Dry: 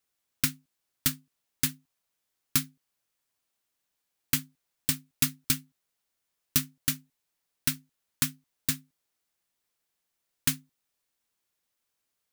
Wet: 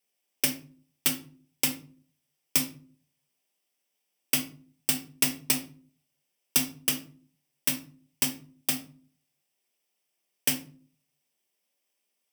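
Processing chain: minimum comb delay 0.36 ms; HPF 270 Hz 12 dB/oct; shoebox room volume 350 m³, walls furnished, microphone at 1.2 m; gain +2.5 dB

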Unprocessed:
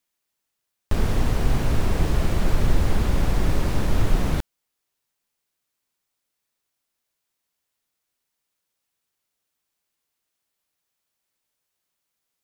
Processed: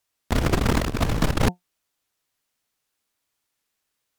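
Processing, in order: high shelf 5100 Hz -6 dB; notches 60/120/180/240/300 Hz; negative-ratio compressor -23 dBFS, ratio -0.5; wide varispeed 2.97×; record warp 78 rpm, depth 100 cents; gain +2.5 dB

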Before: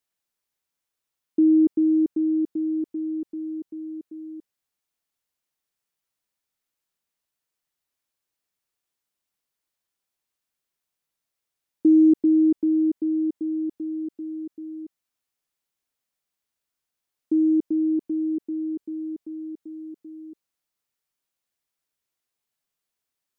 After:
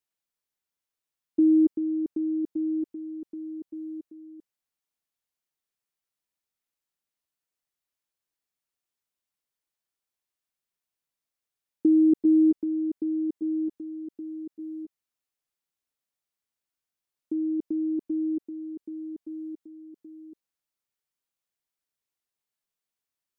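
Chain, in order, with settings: level quantiser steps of 9 dB

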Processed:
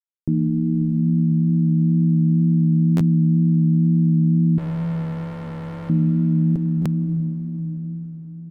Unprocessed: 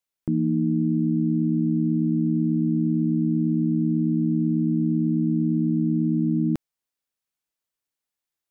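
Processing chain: tilt shelf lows +9.5 dB, about 630 Hz; comb 7.3 ms, depth 32%; crossover distortion -58.5 dBFS; diffused feedback echo 0.594 s, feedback 44%, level -8 dB; 4.58–5.9 hard clip -27.5 dBFS, distortion -7 dB; plate-style reverb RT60 4.4 s, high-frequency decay 0.95×, DRR 7 dB; wow and flutter 24 cents; stuck buffer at 2.96/6.81, samples 512, times 3; gain -4 dB

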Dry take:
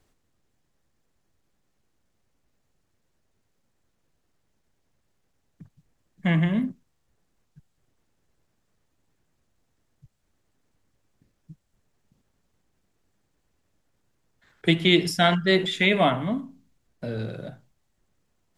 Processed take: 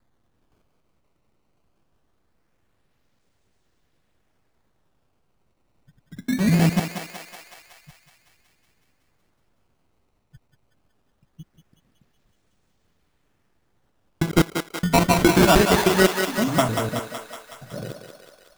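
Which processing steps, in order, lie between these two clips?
slices in reverse order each 0.103 s, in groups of 6; decimation with a swept rate 15×, swing 160% 0.22 Hz; thinning echo 0.186 s, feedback 68%, high-pass 450 Hz, level -5 dB; gain +4 dB

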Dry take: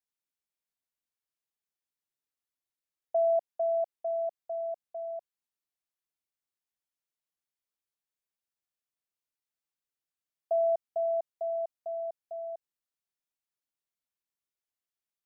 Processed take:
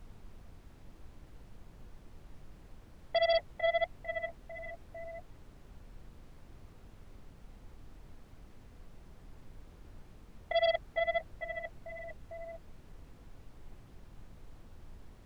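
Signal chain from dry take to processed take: flange 1.5 Hz, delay 7 ms, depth 6.9 ms, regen +28%; added harmonics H 6 -24 dB, 7 -11 dB, 8 -27 dB, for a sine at -21.5 dBFS; added noise brown -50 dBFS

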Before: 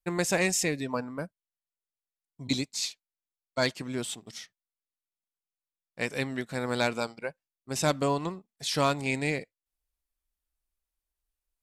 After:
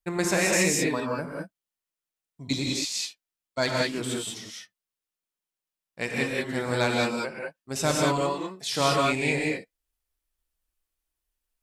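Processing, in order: 8.2–8.79 HPF 330 Hz -> 160 Hz; non-linear reverb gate 0.22 s rising, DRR -2.5 dB

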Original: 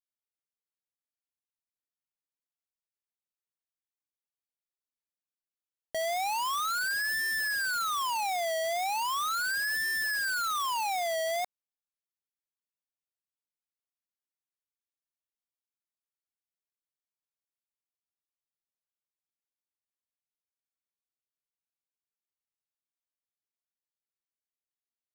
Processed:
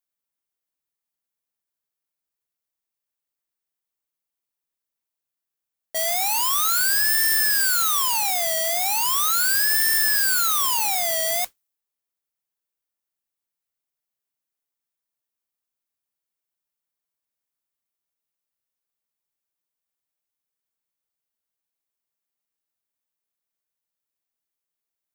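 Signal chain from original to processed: RIAA curve recording; modulation noise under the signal 14 dB; mismatched tape noise reduction decoder only; gain +3 dB

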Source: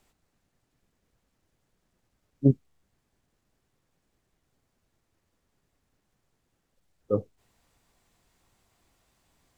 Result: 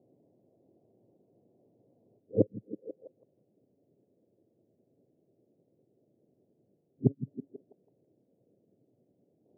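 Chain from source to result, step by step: whole clip reversed; bell 390 Hz +10.5 dB 1.5 oct; flipped gate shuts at -8 dBFS, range -36 dB; in parallel at -9 dB: wrapped overs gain 10.5 dB; on the sum: elliptic band-pass 110–620 Hz, stop band 40 dB; on a send: delay with a stepping band-pass 0.163 s, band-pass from 170 Hz, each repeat 0.7 oct, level -10 dB

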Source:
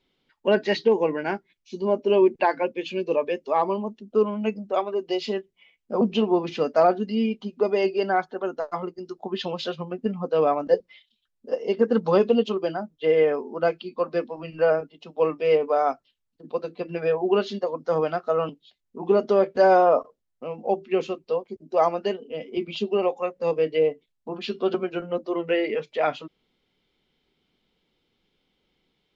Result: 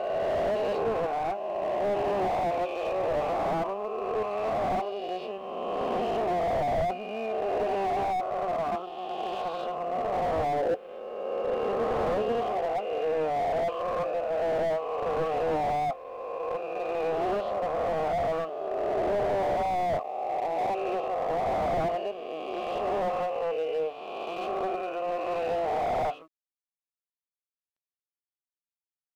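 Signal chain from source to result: spectral swells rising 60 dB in 2.57 s; vowel filter a; requantised 12-bit, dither none; sample leveller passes 1; high shelf 5400 Hz -11.5 dB; slew limiter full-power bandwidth 31 Hz; gain +1 dB

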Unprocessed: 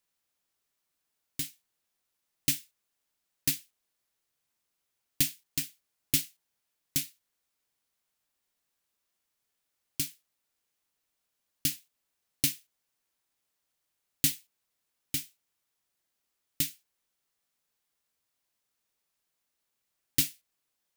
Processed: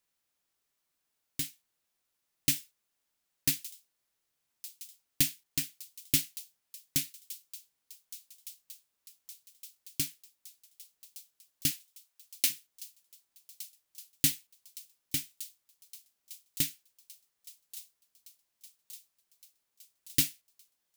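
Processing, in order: 11.71–12.5 HPF 610 Hz 12 dB/oct; on a send: thin delay 1.165 s, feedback 72%, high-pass 3600 Hz, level -16 dB

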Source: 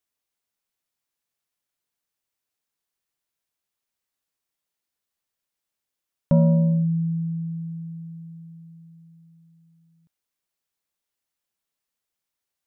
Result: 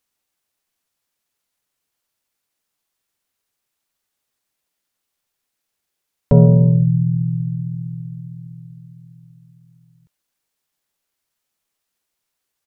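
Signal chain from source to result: harmoniser -5 st 0 dB, -3 st -15 dB; gain +4 dB

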